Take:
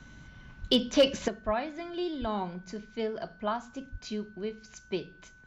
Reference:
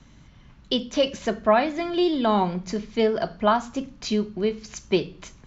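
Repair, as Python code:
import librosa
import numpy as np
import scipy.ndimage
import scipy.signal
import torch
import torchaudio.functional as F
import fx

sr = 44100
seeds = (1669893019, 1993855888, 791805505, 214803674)

y = fx.fix_declip(x, sr, threshold_db=-14.0)
y = fx.notch(y, sr, hz=1500.0, q=30.0)
y = fx.fix_deplosive(y, sr, at_s=(0.6, 1.45, 2.2, 3.91))
y = fx.fix_level(y, sr, at_s=1.28, step_db=11.5)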